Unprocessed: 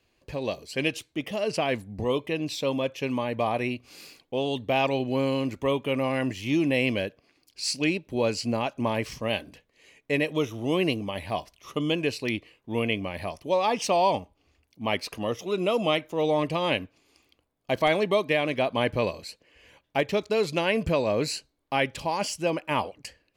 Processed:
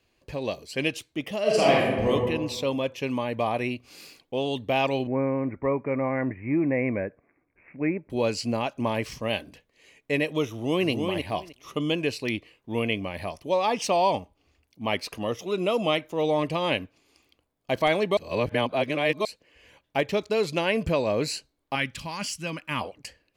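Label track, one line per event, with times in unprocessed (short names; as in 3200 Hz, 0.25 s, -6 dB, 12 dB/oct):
1.420000	2.100000	reverb throw, RT60 1.3 s, DRR -6 dB
5.070000	8.100000	steep low-pass 2300 Hz 96 dB/oct
10.490000	10.900000	echo throw 0.31 s, feedback 15%, level -5 dB
18.170000	19.250000	reverse
21.750000	22.810000	band shelf 550 Hz -11 dB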